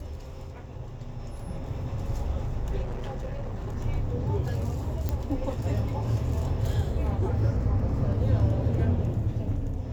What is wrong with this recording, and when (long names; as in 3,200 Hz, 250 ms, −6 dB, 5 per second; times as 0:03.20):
0:02.82–0:03.77: clipping −29 dBFS
0:05.09: click −16 dBFS